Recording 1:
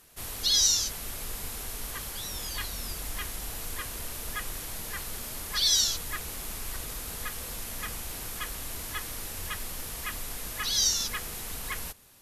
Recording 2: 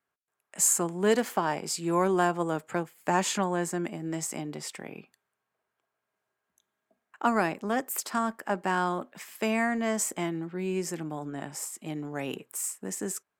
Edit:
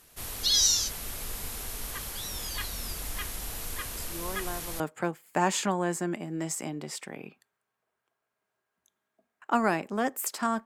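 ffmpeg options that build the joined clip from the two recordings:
ffmpeg -i cue0.wav -i cue1.wav -filter_complex "[1:a]asplit=2[link_01][link_02];[0:a]apad=whole_dur=10.65,atrim=end=10.65,atrim=end=4.802[link_03];[link_02]atrim=start=2.518:end=8.37[link_04];[link_01]atrim=start=1.69:end=2.52,asetpts=PTS-STARTPTS,volume=-13.5dB,afade=type=in:duration=0.004:curve=hsin,afade=type=out:start_time=0.826:duration=0.004:curve=hsin,adelay=175077S[link_05];[link_03][link_04]acrossfade=duration=0.004:curve1=hsin:curve2=hsin[link_06];[link_06][link_05]amix=inputs=2:normalize=0" out.wav

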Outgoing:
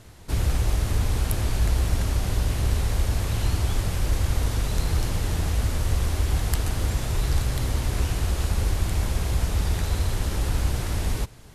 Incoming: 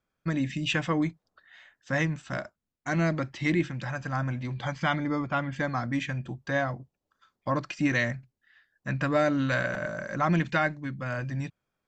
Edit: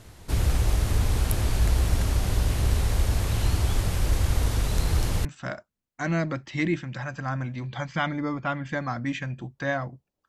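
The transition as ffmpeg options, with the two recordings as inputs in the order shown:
ffmpeg -i cue0.wav -i cue1.wav -filter_complex "[0:a]apad=whole_dur=10.28,atrim=end=10.28,atrim=end=5.252[link_01];[1:a]atrim=start=2.118:end=7.15[link_02];[link_01][link_02]acrossfade=duration=0.004:curve1=hsin:curve2=hsin" out.wav

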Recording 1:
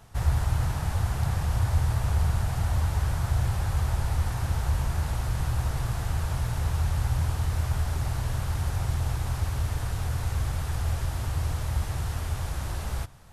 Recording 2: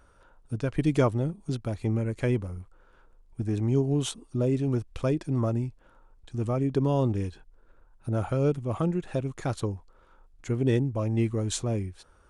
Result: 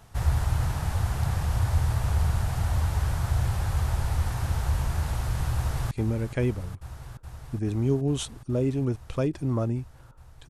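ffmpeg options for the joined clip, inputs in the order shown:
ffmpeg -i cue0.wav -i cue1.wav -filter_complex "[0:a]apad=whole_dur=10.49,atrim=end=10.49,atrim=end=5.912[link_01];[1:a]atrim=start=1.768:end=6.35[link_02];[link_01][link_02]acrossfade=duration=0.004:curve1=hsin:curve2=hsin,asplit=2[link_03][link_04];[link_04]afade=type=in:start_time=5.55:duration=0.01,afade=type=out:start_time=5.91:duration=0.01,aecho=0:1:420|840|1260|1680|2100|2520|2940|3360|3780|4200|4620|5040:0.316228|0.268794|0.228475|0.194203|0.165073|0.140312|0.119265|0.101375|0.0861691|0.0732437|0.0622572|0.0529186[link_05];[link_03][link_05]amix=inputs=2:normalize=0" out.wav

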